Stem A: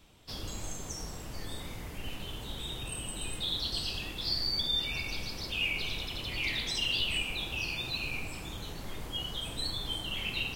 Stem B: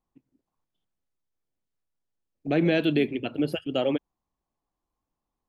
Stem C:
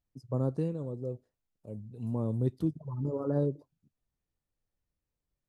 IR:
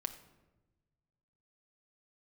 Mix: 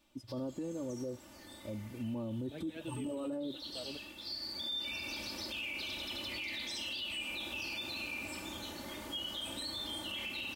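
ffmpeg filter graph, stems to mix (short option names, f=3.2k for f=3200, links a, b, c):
-filter_complex "[0:a]highpass=130,volume=-2.5dB,afade=t=in:st=4.36:d=0.68:silence=0.354813[a];[1:a]asplit=2[b][c];[c]adelay=4.7,afreqshift=-2.3[d];[b][d]amix=inputs=2:normalize=1,volume=-18dB[e];[2:a]volume=1.5dB,asplit=2[f][g];[g]apad=whole_len=241943[h];[e][h]sidechaincompress=threshold=-34dB:ratio=8:attack=16:release=117[i];[a][f]amix=inputs=2:normalize=0,aecho=1:1:3.4:0.9,acompressor=threshold=-36dB:ratio=2.5,volume=0dB[j];[i][j]amix=inputs=2:normalize=0,alimiter=level_in=8dB:limit=-24dB:level=0:latency=1:release=11,volume=-8dB"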